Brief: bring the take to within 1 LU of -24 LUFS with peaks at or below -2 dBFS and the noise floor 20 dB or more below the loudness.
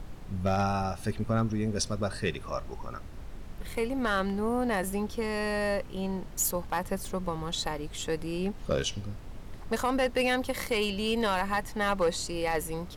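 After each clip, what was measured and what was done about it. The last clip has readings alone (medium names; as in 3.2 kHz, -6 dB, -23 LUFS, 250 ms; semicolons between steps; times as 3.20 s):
clipped samples 0.4%; clipping level -19.5 dBFS; noise floor -43 dBFS; noise floor target -51 dBFS; loudness -30.5 LUFS; peak level -19.5 dBFS; loudness target -24.0 LUFS
-> clip repair -19.5 dBFS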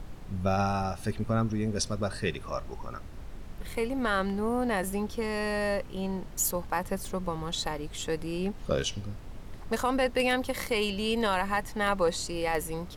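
clipped samples 0.0%; noise floor -43 dBFS; noise floor target -51 dBFS
-> noise print and reduce 8 dB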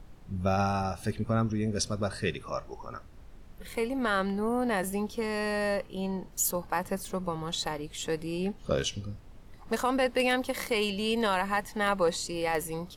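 noise floor -50 dBFS; noise floor target -51 dBFS
-> noise print and reduce 6 dB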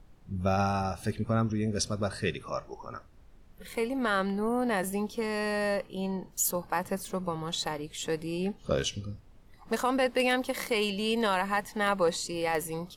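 noise floor -55 dBFS; loudness -30.5 LUFS; peak level -13.0 dBFS; loudness target -24.0 LUFS
-> trim +6.5 dB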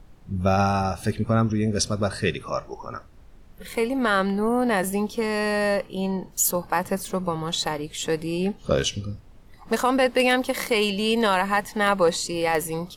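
loudness -24.0 LUFS; peak level -6.5 dBFS; noise floor -48 dBFS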